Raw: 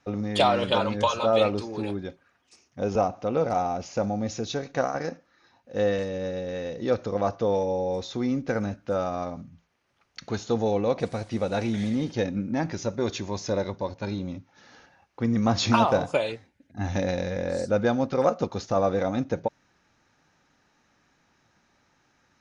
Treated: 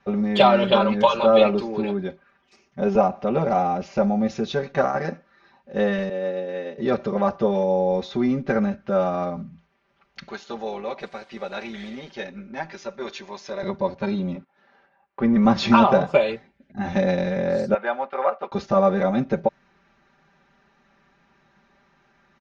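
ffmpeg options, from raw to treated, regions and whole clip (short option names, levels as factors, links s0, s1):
-filter_complex "[0:a]asettb=1/sr,asplit=3[s0][s1][s2];[s0]atrim=end=6.094[s3];[s1]atrim=start=6.09:end=6.78,asetpts=PTS-STARTPTS,afade=t=in:d=0.004:c=qsin,afade=t=out:st=0.686:d=0.004:c=qsin,agate=range=0.0224:threshold=0.0316:ratio=3:release=100:detection=peak,highpass=f=230:w=0.5412,highpass=f=230:w=1.3066,highshelf=f=6100:g=-7.5[s4];[s2]atrim=start=6.776[s5];[s3][s4]acrossfade=d=0.004:c1=hsin:c2=qsin[s6];[s6][s5]acrossfade=d=0.004:c1=qsin:c2=hsin,asettb=1/sr,asplit=3[s7][s8][s9];[s7]atrim=end=10.284[s10];[s8]atrim=start=10.28:end=13.63,asetpts=PTS-STARTPTS,afade=t=in:d=0.004:c=qsin,afade=t=out:st=3.346:d=0.004:c=qsin,highpass=f=1200:p=1,tremolo=f=150:d=0.4[s11];[s9]atrim=start=13.626[s12];[s10][s11]acrossfade=d=0.004:c1=hsin:c2=qsin[s13];[s13][s12]acrossfade=d=0.004:c1=qsin:c2=hsin,asettb=1/sr,asplit=3[s14][s15][s16];[s14]atrim=end=14.354[s17];[s15]atrim=start=14.35:end=15.45,asetpts=PTS-STARTPTS,afade=t=in:d=0.004:c=qsin,afade=t=out:st=1.096:d=0.004:c=qsin,agate=range=0.2:threshold=0.00316:ratio=16:release=100:detection=peak,asplit=2[s18][s19];[s19]highpass=f=720:p=1,volume=5.01,asoftclip=type=tanh:threshold=0.2[s20];[s18][s20]amix=inputs=2:normalize=0,lowpass=f=1100:p=1,volume=0.501[s21];[s16]atrim=start=15.446[s22];[s17][s21]acrossfade=d=0.004:c1=hsin:c2=qsin[s23];[s23][s22]acrossfade=d=0.004:c1=qsin:c2=hsin,asettb=1/sr,asplit=3[s24][s25][s26];[s24]atrim=end=17.744[s27];[s25]atrim=start=17.74:end=18.52,asetpts=PTS-STARTPTS,afade=t=in:d=0.004:c=qsin,afade=t=out:st=0.776:d=0.004:c=qsin,agate=range=0.0224:threshold=0.02:ratio=3:release=100:detection=peak,asuperpass=centerf=1400:order=4:qfactor=0.63[s28];[s26]atrim=start=18.516[s29];[s27][s28]acrossfade=d=0.004:c1=hsin:c2=qsin[s30];[s30][s29]acrossfade=d=0.004:c1=qsin:c2=hsin,lowpass=3200,aecho=1:1:5.1:0.96,volume=1.41"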